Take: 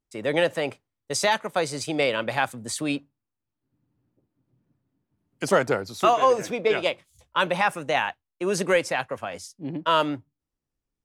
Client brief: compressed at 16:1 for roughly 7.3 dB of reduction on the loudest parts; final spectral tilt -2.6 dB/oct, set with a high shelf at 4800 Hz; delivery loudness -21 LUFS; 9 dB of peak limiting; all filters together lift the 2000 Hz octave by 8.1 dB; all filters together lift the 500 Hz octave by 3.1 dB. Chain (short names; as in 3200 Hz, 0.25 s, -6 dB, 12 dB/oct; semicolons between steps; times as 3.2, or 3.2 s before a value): bell 500 Hz +3 dB; bell 2000 Hz +8.5 dB; high shelf 4800 Hz +9 dB; compressor 16:1, threshold -18 dBFS; gain +6.5 dB; limiter -9 dBFS